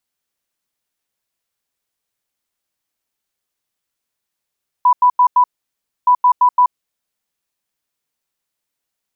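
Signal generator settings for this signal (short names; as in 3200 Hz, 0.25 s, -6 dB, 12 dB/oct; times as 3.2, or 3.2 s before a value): beep pattern sine 990 Hz, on 0.08 s, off 0.09 s, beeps 4, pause 0.63 s, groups 2, -7 dBFS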